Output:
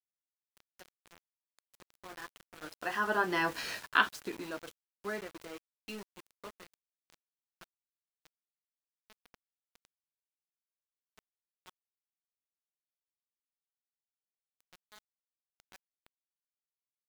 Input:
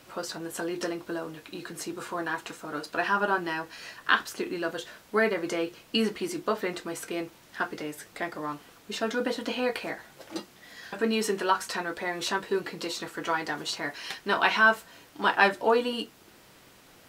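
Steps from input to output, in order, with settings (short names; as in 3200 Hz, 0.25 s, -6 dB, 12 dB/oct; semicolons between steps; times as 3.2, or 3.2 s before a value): Doppler pass-by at 3.59, 14 m/s, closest 2.2 m; sample gate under -49 dBFS; gain +5.5 dB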